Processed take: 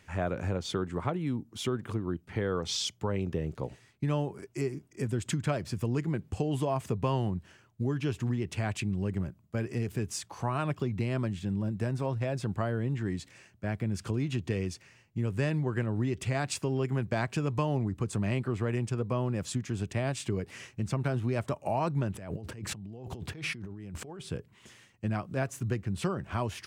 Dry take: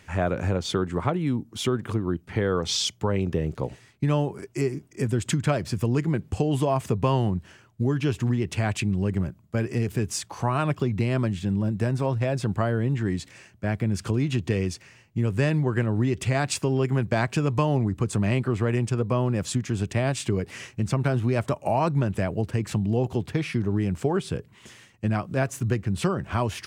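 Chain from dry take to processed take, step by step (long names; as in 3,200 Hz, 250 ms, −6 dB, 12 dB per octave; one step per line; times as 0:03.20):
0:22.14–0:24.21: compressor whose output falls as the input rises −34 dBFS, ratio −1
level −6.5 dB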